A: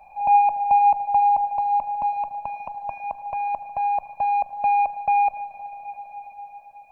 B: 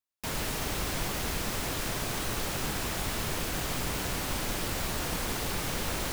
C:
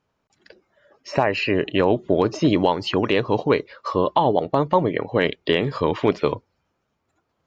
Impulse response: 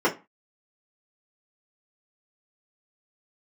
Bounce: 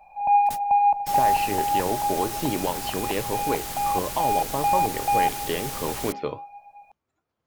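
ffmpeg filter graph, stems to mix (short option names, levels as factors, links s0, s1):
-filter_complex "[0:a]volume=0.75[s0];[1:a]aemphasis=mode=production:type=cd,volume=0.562[s1];[2:a]flanger=delay=7.6:depth=8.1:regen=69:speed=1.2:shape=sinusoidal,volume=0.596,asplit=2[s2][s3];[s3]apad=whole_len=270008[s4];[s1][s4]sidechaingate=range=0.00631:threshold=0.00158:ratio=16:detection=peak[s5];[s0][s5][s2]amix=inputs=3:normalize=0"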